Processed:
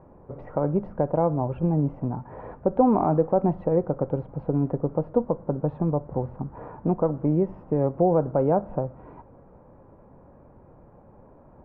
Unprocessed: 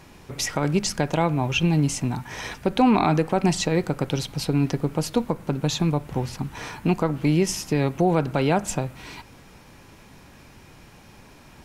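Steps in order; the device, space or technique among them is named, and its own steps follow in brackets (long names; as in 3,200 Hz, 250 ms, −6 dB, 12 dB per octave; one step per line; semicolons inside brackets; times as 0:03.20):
under water (low-pass filter 1,100 Hz 24 dB per octave; parametric band 540 Hz +8.5 dB 0.51 octaves)
level −3 dB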